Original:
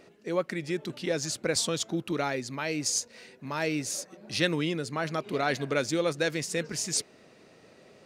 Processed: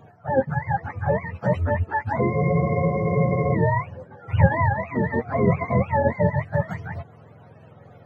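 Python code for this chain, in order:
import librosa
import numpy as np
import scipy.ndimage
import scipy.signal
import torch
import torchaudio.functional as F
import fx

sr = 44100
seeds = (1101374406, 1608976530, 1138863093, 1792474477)

y = fx.octave_mirror(x, sr, pivot_hz=540.0)
y = fx.spec_freeze(y, sr, seeds[0], at_s=2.33, hold_s=1.2)
y = y * 10.0 ** (8.5 / 20.0)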